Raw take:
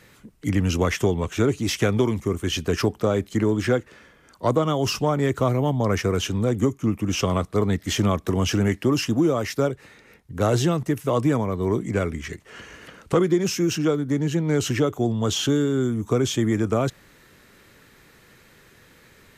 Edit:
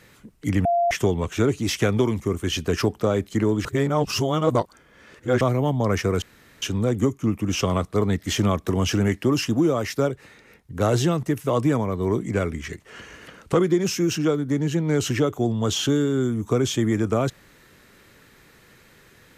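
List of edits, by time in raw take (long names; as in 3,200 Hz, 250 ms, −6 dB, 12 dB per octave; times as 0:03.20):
0:00.65–0:00.91: beep over 691 Hz −17 dBFS
0:03.65–0:05.41: reverse
0:06.22: splice in room tone 0.40 s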